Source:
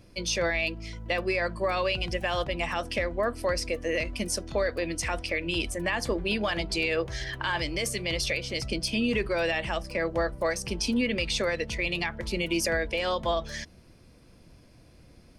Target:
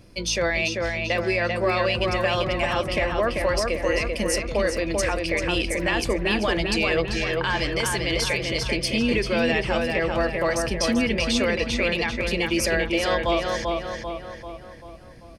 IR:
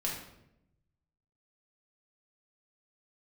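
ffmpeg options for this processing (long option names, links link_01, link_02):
-filter_complex "[0:a]asplit=2[link_01][link_02];[link_02]adelay=391,lowpass=frequency=3600:poles=1,volume=-3dB,asplit=2[link_03][link_04];[link_04]adelay=391,lowpass=frequency=3600:poles=1,volume=0.53,asplit=2[link_05][link_06];[link_06]adelay=391,lowpass=frequency=3600:poles=1,volume=0.53,asplit=2[link_07][link_08];[link_08]adelay=391,lowpass=frequency=3600:poles=1,volume=0.53,asplit=2[link_09][link_10];[link_10]adelay=391,lowpass=frequency=3600:poles=1,volume=0.53,asplit=2[link_11][link_12];[link_12]adelay=391,lowpass=frequency=3600:poles=1,volume=0.53,asplit=2[link_13][link_14];[link_14]adelay=391,lowpass=frequency=3600:poles=1,volume=0.53[link_15];[link_01][link_03][link_05][link_07][link_09][link_11][link_13][link_15]amix=inputs=8:normalize=0,acontrast=88,volume=-3.5dB"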